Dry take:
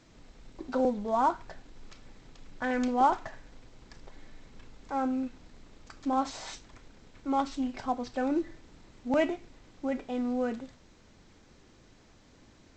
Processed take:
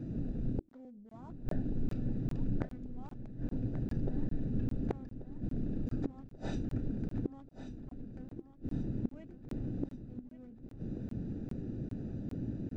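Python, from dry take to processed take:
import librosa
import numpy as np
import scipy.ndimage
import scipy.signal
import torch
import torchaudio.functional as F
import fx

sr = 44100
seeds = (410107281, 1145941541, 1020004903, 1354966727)

p1 = fx.wiener(x, sr, points=41)
p2 = fx.graphic_eq(p1, sr, hz=(125, 250, 1000), db=(10, 8, -4))
p3 = fx.over_compress(p2, sr, threshold_db=-27.0, ratio=-1.0)
p4 = p2 + (p3 * librosa.db_to_amplitude(-1.0))
p5 = fx.gate_flip(p4, sr, shuts_db=-27.0, range_db=-39)
p6 = fx.echo_feedback(p5, sr, ms=1135, feedback_pct=51, wet_db=-11)
p7 = fx.buffer_crackle(p6, sr, first_s=0.69, period_s=0.4, block=1024, kind='zero')
y = p7 * librosa.db_to_amplitude(6.0)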